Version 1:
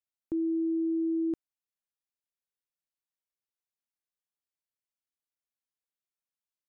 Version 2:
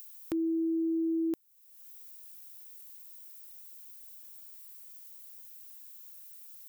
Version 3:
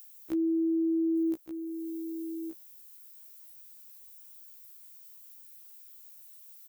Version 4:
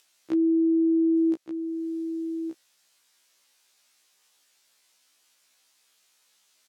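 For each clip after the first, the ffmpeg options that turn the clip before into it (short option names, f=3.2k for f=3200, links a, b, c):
-af "aemphasis=mode=production:type=riaa,acompressor=mode=upward:threshold=-37dB:ratio=2.5,volume=4dB"
-af "aecho=1:1:1174:0.335,afftfilt=real='re*1.73*eq(mod(b,3),0)':imag='im*1.73*eq(mod(b,3),0)':win_size=2048:overlap=0.75"
-af "highpass=130,lowpass=5.2k,volume=6dB"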